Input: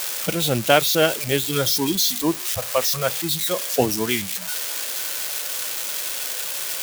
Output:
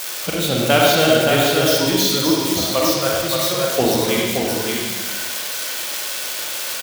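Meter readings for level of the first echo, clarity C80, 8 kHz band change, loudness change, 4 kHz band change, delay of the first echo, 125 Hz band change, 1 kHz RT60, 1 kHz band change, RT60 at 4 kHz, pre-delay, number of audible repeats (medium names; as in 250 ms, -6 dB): -4.5 dB, -1.0 dB, +1.5 dB, +3.5 dB, +4.5 dB, 573 ms, +4.0 dB, 1.3 s, +5.0 dB, 1.3 s, 36 ms, 1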